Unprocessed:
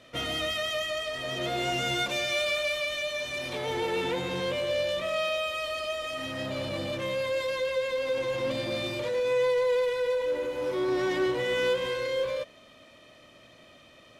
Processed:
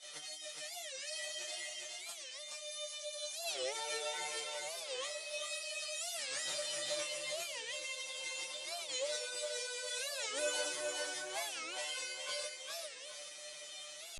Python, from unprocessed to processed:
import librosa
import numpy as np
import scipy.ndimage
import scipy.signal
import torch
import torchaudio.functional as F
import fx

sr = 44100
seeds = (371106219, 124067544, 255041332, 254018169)

p1 = scipy.signal.sosfilt(scipy.signal.cheby1(5, 1.0, 10000.0, 'lowpass', fs=sr, output='sos'), x)
p2 = fx.riaa(p1, sr, side='recording')
p3 = fx.dereverb_blind(p2, sr, rt60_s=0.59)
p4 = fx.bass_treble(p3, sr, bass_db=-12, treble_db=11)
p5 = p4 + 0.87 * np.pad(p4, (int(5.3 * sr / 1000.0), 0))[:len(p4)]
p6 = fx.over_compress(p5, sr, threshold_db=-34.0, ratio=-1.0)
p7 = fx.chorus_voices(p6, sr, voices=2, hz=0.71, base_ms=23, depth_ms=4.9, mix_pct=65)
p8 = fx.comb_fb(p7, sr, f0_hz=150.0, decay_s=0.19, harmonics='all', damping=0.0, mix_pct=100)
p9 = p8 + fx.echo_feedback(p8, sr, ms=412, feedback_pct=34, wet_db=-3.0, dry=0)
p10 = fx.record_warp(p9, sr, rpm=45.0, depth_cents=250.0)
y = F.gain(torch.from_numpy(p10), 1.5).numpy()